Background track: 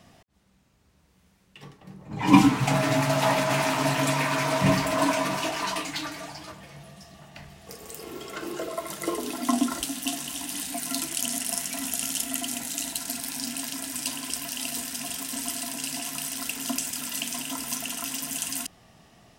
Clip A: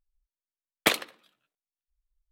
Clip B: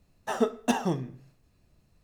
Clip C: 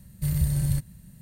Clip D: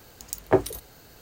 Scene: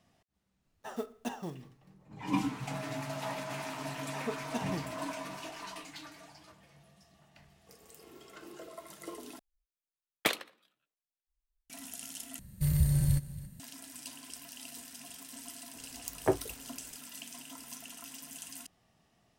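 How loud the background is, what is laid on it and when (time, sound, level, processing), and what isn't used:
background track −15 dB
0:00.57: mix in B −12.5 dB, fades 0.10 s + one scale factor per block 5 bits
0:03.86: mix in B −12 dB
0:09.39: overwrite with A −6.5 dB
0:12.39: overwrite with C −2.5 dB + single-tap delay 277 ms −17.5 dB
0:15.75: mix in D −8 dB

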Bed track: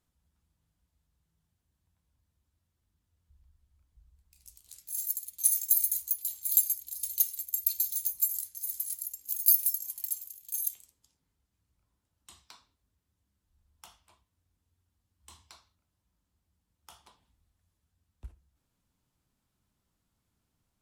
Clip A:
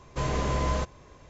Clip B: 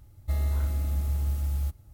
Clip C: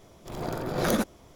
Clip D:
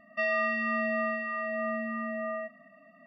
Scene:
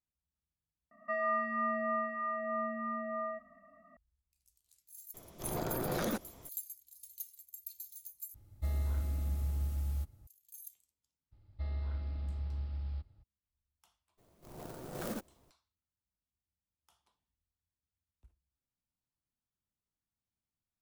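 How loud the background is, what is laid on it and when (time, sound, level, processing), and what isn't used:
bed track −18 dB
0:00.91: mix in D −6 dB + high shelf with overshoot 2,100 Hz −13.5 dB, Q 3
0:05.14: mix in C −3 dB + downward compressor 4 to 1, threshold −28 dBFS
0:08.34: overwrite with B −7.5 dB + parametric band 230 Hz +2.5 dB 2.1 octaves
0:11.31: mix in B −10.5 dB, fades 0.02 s + downsampling to 11,025 Hz
0:14.17: mix in C −14.5 dB, fades 0.02 s + converter with an unsteady clock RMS 0.078 ms
not used: A

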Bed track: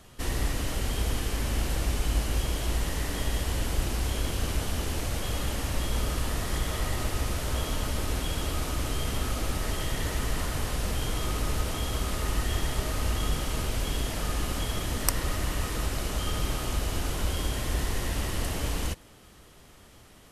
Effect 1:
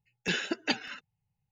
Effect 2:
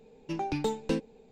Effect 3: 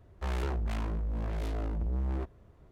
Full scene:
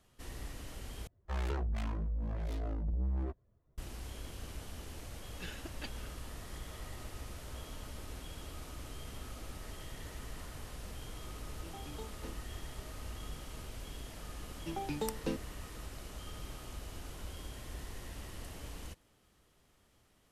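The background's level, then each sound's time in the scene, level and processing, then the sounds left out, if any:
bed track −16 dB
0:01.07: overwrite with 3 −1.5 dB + spectral dynamics exaggerated over time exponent 1.5
0:05.14: mix in 1 −15.5 dB + gain on one half-wave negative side −3 dB
0:11.34: mix in 2 −18 dB + wavefolder on the positive side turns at −24.5 dBFS
0:14.37: mix in 2 −7 dB

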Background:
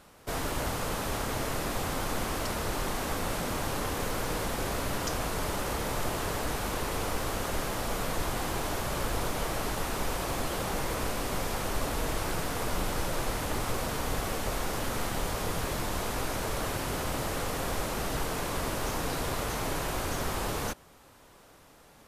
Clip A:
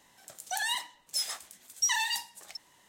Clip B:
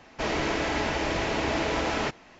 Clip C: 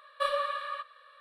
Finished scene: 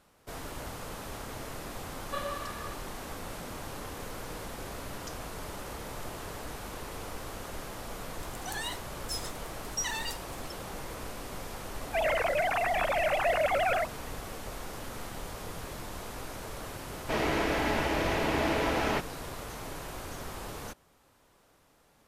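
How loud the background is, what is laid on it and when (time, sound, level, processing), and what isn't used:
background −8.5 dB
0:01.92: mix in C −7 dB
0:07.95: mix in A −6 dB + gate on every frequency bin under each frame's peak −45 dB strong
0:11.75: mix in B −0.5 dB + three sine waves on the formant tracks
0:16.90: mix in B −1 dB + low-pass filter 3,800 Hz 6 dB per octave

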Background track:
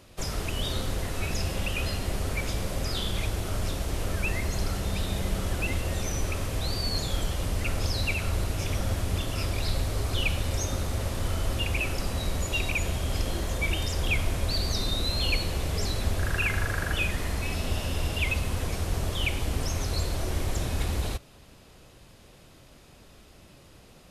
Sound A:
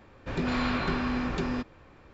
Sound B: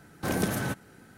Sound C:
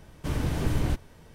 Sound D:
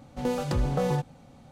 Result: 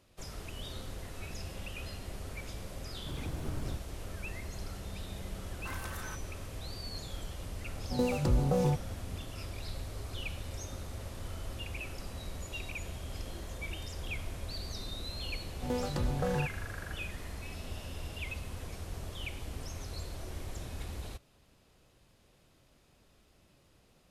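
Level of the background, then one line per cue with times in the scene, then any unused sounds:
background track −12.5 dB
0:02.82: mix in C −12 dB + running median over 15 samples
0:05.42: mix in B −12.5 dB + low shelf with overshoot 720 Hz −12.5 dB, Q 3
0:07.74: mix in D −1 dB + parametric band 2,100 Hz −10.5 dB 2 octaves
0:15.45: mix in D −6 dB
not used: A

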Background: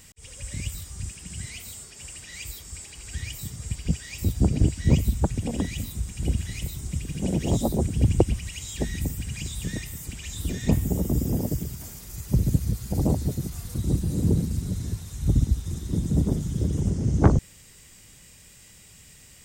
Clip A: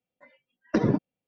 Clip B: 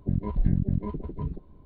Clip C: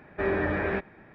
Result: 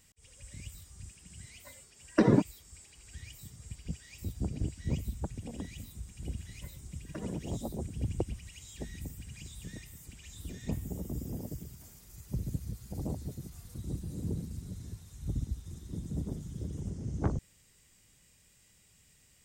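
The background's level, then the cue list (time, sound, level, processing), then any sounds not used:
background −13.5 dB
0:01.44: mix in A
0:06.41: mix in A −5 dB + downward compressor 4 to 1, threshold −36 dBFS
not used: B, C

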